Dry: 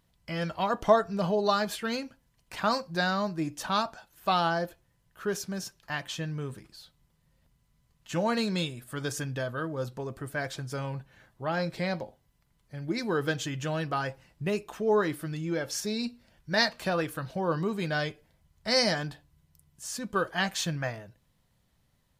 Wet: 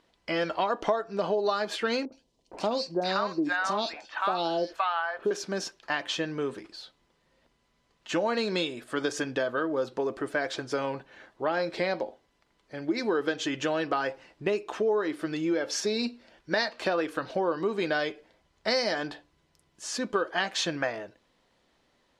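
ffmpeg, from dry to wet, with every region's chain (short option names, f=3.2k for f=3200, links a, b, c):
-filter_complex "[0:a]asettb=1/sr,asplit=3[a][b][c];[a]atrim=end=2.054[d];[b]atrim=start=2.05:end=5.31,asetpts=PTS-STARTPTS,afade=t=in:d=0.004:c=qsin,afade=t=out:st=3.256:d=0.004:c=qsin,equalizer=f=12k:w=2.7:g=-5.5,acrossover=split=840|3000[e][f][g];[g]adelay=70[h];[f]adelay=520[i];[e][i][h]amix=inputs=3:normalize=0,atrim=end_sample=143766[j];[c]atrim=start=5.306[k];[d][j]acrossfade=d=0.004:c1=hsin:c2=qsin[l];[l][k]acrossfade=d=0.004:c1=qsin:c2=hsin,lowpass=5.3k,lowshelf=f=210:t=q:w=1.5:g=-14,acompressor=threshold=-32dB:ratio=5,volume=7.5dB"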